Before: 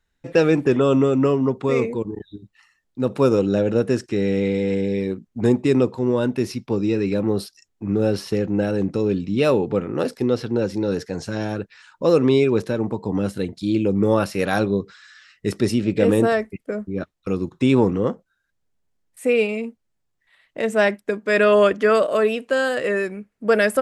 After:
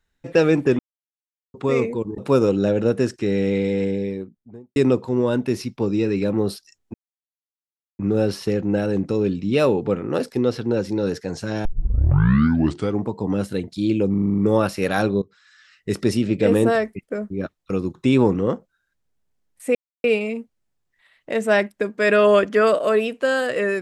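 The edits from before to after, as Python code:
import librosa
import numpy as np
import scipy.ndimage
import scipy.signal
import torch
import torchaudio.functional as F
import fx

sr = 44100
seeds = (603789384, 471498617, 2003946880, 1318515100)

y = fx.studio_fade_out(x, sr, start_s=4.59, length_s=1.07)
y = fx.edit(y, sr, fx.silence(start_s=0.79, length_s=0.75),
    fx.cut(start_s=2.18, length_s=0.9),
    fx.insert_silence(at_s=7.84, length_s=1.05),
    fx.tape_start(start_s=11.5, length_s=1.41),
    fx.stutter(start_s=13.95, slice_s=0.04, count=8),
    fx.fade_in_from(start_s=14.79, length_s=0.71, floor_db=-19.5),
    fx.insert_silence(at_s=19.32, length_s=0.29), tone=tone)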